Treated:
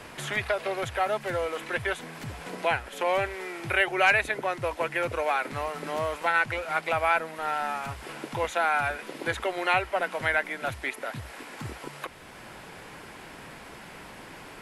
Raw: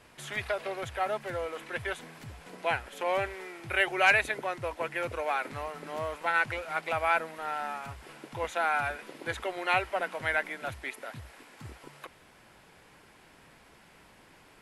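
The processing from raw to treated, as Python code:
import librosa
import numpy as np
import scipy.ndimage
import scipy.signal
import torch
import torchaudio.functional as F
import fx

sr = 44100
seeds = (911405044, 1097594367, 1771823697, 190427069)

y = fx.band_squash(x, sr, depth_pct=40)
y = y * librosa.db_to_amplitude(4.0)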